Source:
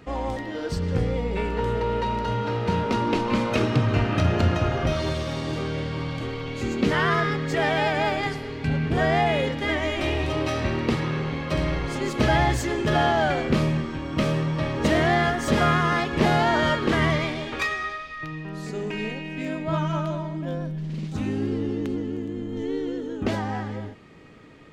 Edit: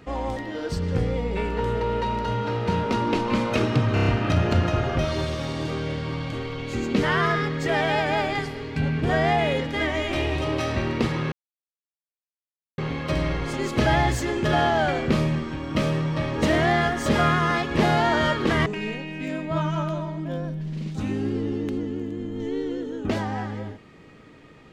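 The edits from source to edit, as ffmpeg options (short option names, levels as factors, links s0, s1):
-filter_complex "[0:a]asplit=7[s0][s1][s2][s3][s4][s5][s6];[s0]atrim=end=3.972[s7];[s1]atrim=start=3.938:end=3.972[s8];[s2]atrim=start=3.938:end=3.972[s9];[s3]atrim=start=3.938:end=3.972[s10];[s4]atrim=start=3.938:end=11.2,asetpts=PTS-STARTPTS,afade=t=out:st=7.258:d=0.004:c=hsin,apad=pad_dur=1.46[s11];[s5]atrim=start=11.2:end=17.082,asetpts=PTS-STARTPTS,afade=t=in:d=0.004:c=hsin[s12];[s6]atrim=start=18.828[s13];[s7][s8]acrossfade=d=0.004:c1=hsin:c2=hsin[s14];[s14][s9]acrossfade=d=0.004:c1=hsin:c2=hsin[s15];[s15][s10]acrossfade=d=0.004:c1=hsin:c2=hsin[s16];[s11][s12]concat=n=2:v=0:a=1[s17];[s16][s17]acrossfade=d=0.004:c1=hsin:c2=hsin[s18];[s18][s13]acrossfade=d=0.004:c1=hsin:c2=hsin"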